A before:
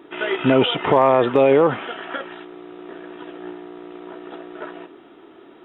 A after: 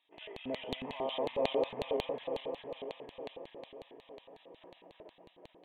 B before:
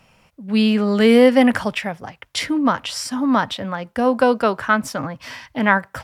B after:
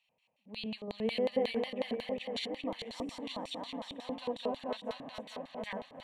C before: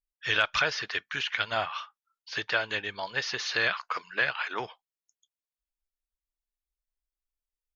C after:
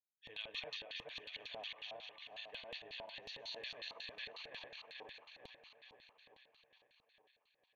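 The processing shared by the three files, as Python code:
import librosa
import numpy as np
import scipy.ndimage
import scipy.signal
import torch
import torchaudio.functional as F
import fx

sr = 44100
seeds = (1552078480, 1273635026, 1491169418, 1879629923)

p1 = fx.reverse_delay_fb(x, sr, ms=219, feedback_pct=79, wet_db=-1.5)
p2 = fx.low_shelf(p1, sr, hz=110.0, db=-10.0)
p3 = p2 + fx.echo_feedback(p2, sr, ms=560, feedback_pct=52, wet_db=-21.5, dry=0)
p4 = fx.filter_lfo_bandpass(p3, sr, shape='square', hz=5.5, low_hz=390.0, high_hz=4300.0, q=6.8)
y = fx.fixed_phaser(p4, sr, hz=1400.0, stages=6)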